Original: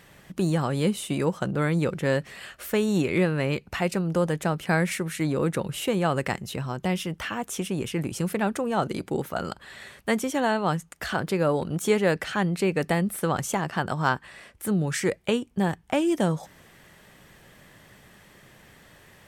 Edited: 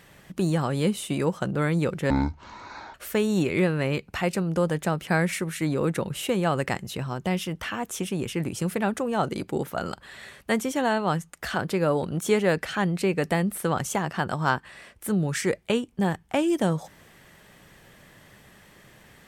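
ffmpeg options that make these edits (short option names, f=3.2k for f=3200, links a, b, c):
-filter_complex "[0:a]asplit=3[a][b][c];[a]atrim=end=2.104[d];[b]atrim=start=2.1:end=2.53,asetpts=PTS-STARTPTS,asetrate=22491,aresample=44100,atrim=end_sample=37182,asetpts=PTS-STARTPTS[e];[c]atrim=start=2.526[f];[d][e]acrossfade=d=0.004:c1=hsin:c2=hsin[g];[g][f]acrossfade=d=0.004:c1=hsin:c2=hsin"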